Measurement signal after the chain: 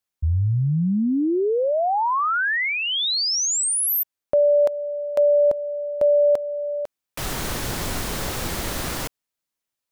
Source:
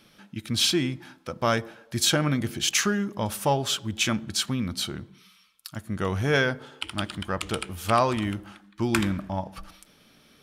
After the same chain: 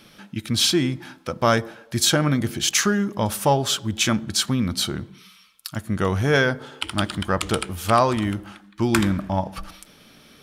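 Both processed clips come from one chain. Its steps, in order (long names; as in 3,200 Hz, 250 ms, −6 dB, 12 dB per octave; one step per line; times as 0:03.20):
dynamic equaliser 2,600 Hz, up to −4 dB, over −44 dBFS, Q 2.3
in parallel at −2 dB: speech leveller within 4 dB 0.5 s
on the sum: hard clipping −5 dBFS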